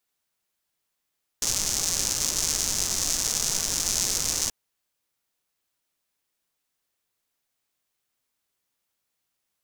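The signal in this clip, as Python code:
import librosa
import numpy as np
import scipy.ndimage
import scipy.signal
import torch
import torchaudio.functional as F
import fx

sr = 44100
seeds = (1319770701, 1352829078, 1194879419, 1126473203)

y = fx.rain(sr, seeds[0], length_s=3.08, drops_per_s=230.0, hz=6200.0, bed_db=-9)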